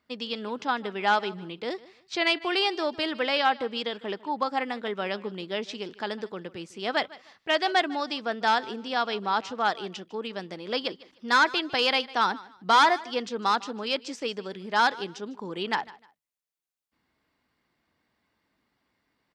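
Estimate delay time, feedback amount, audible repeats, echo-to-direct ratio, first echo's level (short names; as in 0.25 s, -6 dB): 0.152 s, 26%, 2, -19.5 dB, -20.0 dB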